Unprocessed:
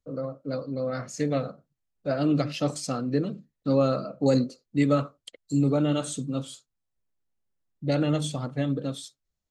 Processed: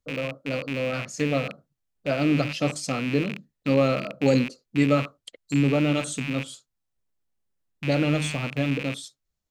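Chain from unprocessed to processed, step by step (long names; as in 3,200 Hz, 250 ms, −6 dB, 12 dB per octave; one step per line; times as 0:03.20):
loose part that buzzes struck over −40 dBFS, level −23 dBFS
level +1.5 dB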